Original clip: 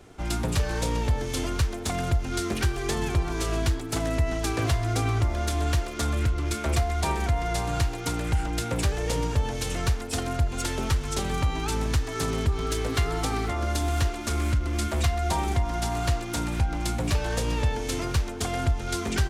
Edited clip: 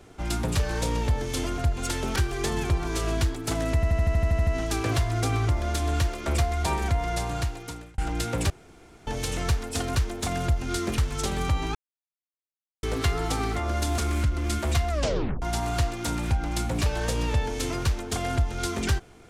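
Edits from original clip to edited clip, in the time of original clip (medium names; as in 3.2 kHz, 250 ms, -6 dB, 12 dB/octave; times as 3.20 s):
1.58–2.61 s: swap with 10.33–10.91 s
4.20 s: stutter 0.08 s, 10 plays
5.99–6.64 s: delete
7.24–8.36 s: fade out equal-power
8.88–9.45 s: room tone
11.68–12.76 s: mute
13.91–14.27 s: delete
15.19 s: tape stop 0.52 s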